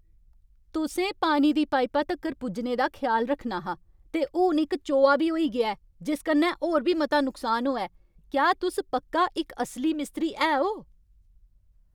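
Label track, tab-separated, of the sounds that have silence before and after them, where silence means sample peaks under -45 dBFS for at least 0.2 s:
0.740000	3.750000	sound
4.140000	5.750000	sound
6.010000	7.870000	sound
8.320000	10.830000	sound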